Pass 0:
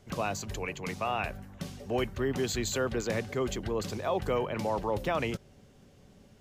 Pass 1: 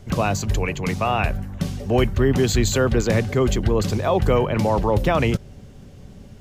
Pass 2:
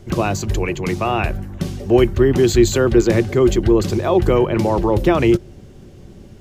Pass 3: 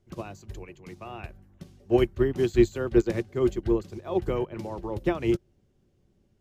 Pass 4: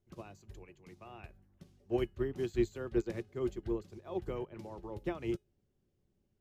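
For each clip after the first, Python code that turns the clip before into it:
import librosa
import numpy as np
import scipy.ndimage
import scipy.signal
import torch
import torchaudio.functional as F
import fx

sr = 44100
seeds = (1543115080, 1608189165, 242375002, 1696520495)

y1 = fx.low_shelf(x, sr, hz=170.0, db=11.0)
y1 = y1 * librosa.db_to_amplitude(9.0)
y2 = fx.peak_eq(y1, sr, hz=350.0, db=14.5, octaves=0.21)
y2 = y2 * librosa.db_to_amplitude(1.0)
y3 = fx.upward_expand(y2, sr, threshold_db=-22.0, expansion=2.5)
y3 = y3 * librosa.db_to_amplitude(-5.0)
y4 = fx.comb_fb(y3, sr, f0_hz=420.0, decay_s=0.24, harmonics='all', damping=0.0, mix_pct=40)
y4 = y4 * librosa.db_to_amplitude(-7.0)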